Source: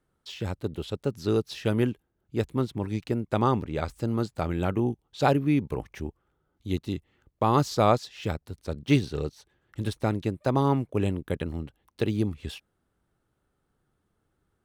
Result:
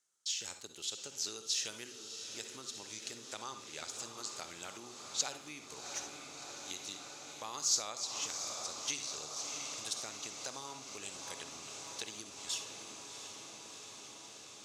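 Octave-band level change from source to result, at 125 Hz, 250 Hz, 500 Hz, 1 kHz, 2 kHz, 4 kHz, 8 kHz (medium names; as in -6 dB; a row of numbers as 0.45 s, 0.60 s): -33.0 dB, -27.0 dB, -22.0 dB, -17.0 dB, -8.5 dB, +2.0 dB, +13.0 dB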